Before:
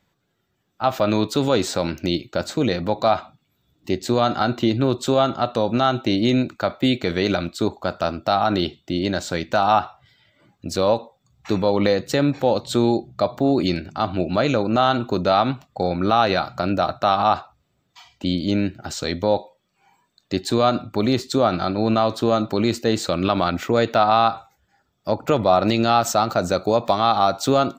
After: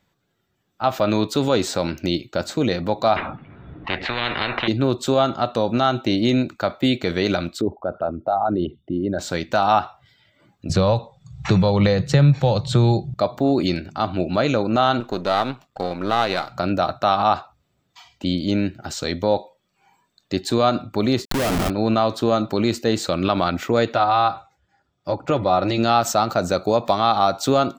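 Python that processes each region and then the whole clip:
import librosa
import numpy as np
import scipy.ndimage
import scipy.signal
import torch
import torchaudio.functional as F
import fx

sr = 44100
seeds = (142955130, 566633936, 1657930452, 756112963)

y = fx.chain(x, sr, fx.lowpass(hz=2000.0, slope=24),
    fx.spectral_comp(ratio=10.0), at=(3.16, 4.68))
y = fx.chain(y, sr, fx.envelope_sharpen(power=2.0),
    fx.air_absorb(metres=390.0), at=(7.61, 9.19))
y = fx.chain(y, sr, fx.lowpass(hz=8200.0, slope=12),
    fx.low_shelf_res(hz=200.0, db=8.0, q=3.0),
    fx.band_squash(depth_pct=70), at=(10.69, 13.14))
y = fx.chain(y, sr, fx.halfwave_gain(db=-7.0),
    fx.low_shelf(hz=160.0, db=-9.0), at=(15.0, 16.52))
y = fx.chain(y, sr, fx.lowpass(hz=4500.0, slope=12),
    fx.schmitt(flips_db=-24.5), at=(21.25, 21.7))
y = fx.chain(y, sr, fx.air_absorb(metres=58.0),
    fx.notch_comb(f0_hz=220.0), at=(23.93, 25.78))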